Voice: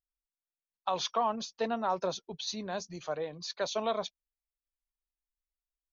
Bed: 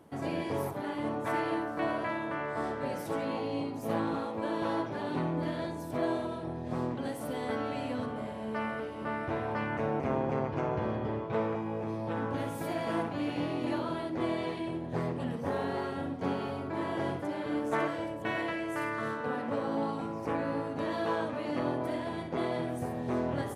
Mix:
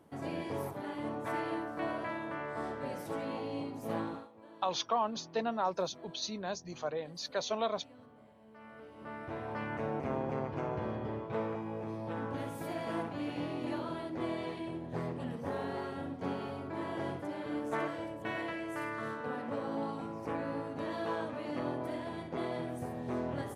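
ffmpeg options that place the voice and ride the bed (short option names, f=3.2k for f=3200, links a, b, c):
-filter_complex "[0:a]adelay=3750,volume=-1.5dB[a];[1:a]volume=12.5dB,afade=t=out:st=4:d=0.29:silence=0.141254,afade=t=in:st=8.58:d=1.13:silence=0.141254[b];[a][b]amix=inputs=2:normalize=0"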